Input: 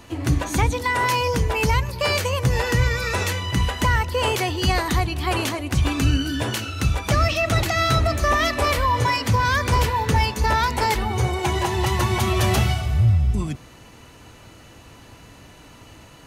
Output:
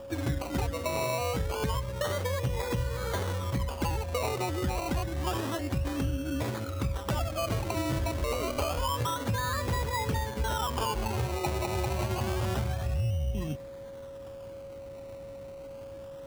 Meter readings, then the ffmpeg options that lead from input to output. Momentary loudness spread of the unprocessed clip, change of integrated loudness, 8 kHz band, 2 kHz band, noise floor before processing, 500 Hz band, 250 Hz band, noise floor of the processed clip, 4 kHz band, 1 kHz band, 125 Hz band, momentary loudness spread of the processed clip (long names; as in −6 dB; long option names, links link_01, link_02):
4 LU, −10.0 dB, −9.5 dB, −14.5 dB, −47 dBFS, −7.0 dB, −8.0 dB, −43 dBFS, −12.0 dB, −11.5 dB, −10.0 dB, 13 LU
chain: -af "lowpass=frequency=1400:width=0.5412,lowpass=frequency=1400:width=1.3066,acompressor=threshold=-23dB:ratio=6,acrusher=samples=21:mix=1:aa=0.000001:lfo=1:lforange=12.6:lforate=0.28,aeval=exprs='val(0)+0.0141*sin(2*PI*550*n/s)':channel_layout=same,volume=-4dB"